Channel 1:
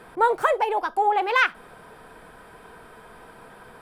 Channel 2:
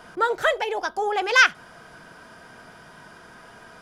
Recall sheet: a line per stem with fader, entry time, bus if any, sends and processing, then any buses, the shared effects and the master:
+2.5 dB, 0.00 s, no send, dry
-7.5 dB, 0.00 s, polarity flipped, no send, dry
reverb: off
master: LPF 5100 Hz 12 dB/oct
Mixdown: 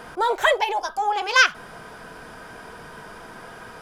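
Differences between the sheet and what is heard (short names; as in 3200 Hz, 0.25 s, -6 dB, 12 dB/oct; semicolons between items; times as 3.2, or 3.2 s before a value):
stem 2 -7.5 dB -> +3.0 dB; master: missing LPF 5100 Hz 12 dB/oct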